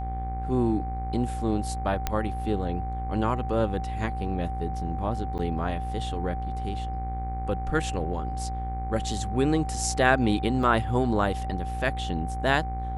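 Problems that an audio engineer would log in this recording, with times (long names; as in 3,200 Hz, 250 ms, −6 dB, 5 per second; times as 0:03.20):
mains buzz 60 Hz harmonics 40 −32 dBFS
whistle 770 Hz −34 dBFS
0:02.07: click −11 dBFS
0:05.38–0:05.39: drop-out 9.1 ms
0:10.63: drop-out 3.1 ms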